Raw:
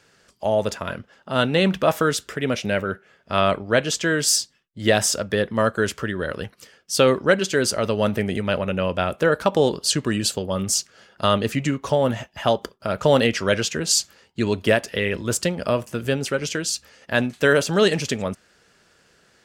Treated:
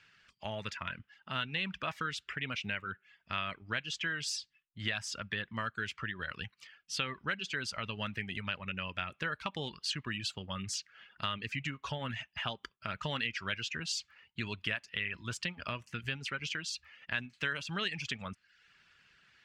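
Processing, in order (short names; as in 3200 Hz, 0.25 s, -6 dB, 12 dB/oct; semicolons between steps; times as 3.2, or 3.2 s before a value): EQ curve 140 Hz 0 dB, 530 Hz -13 dB, 1100 Hz +1 dB, 2600 Hz +10 dB, 14000 Hz -19 dB; reverb removal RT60 0.54 s; compressor 2.5:1, threshold -27 dBFS, peak gain reduction 11 dB; gain -8.5 dB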